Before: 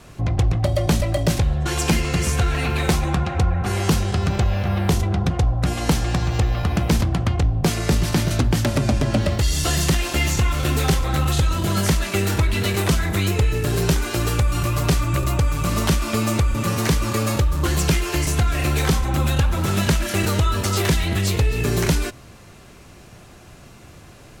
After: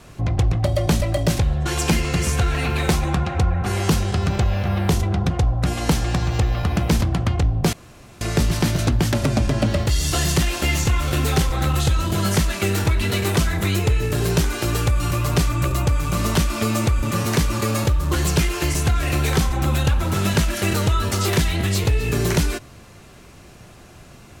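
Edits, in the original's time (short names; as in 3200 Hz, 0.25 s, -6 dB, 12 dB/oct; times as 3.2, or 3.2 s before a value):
7.73 insert room tone 0.48 s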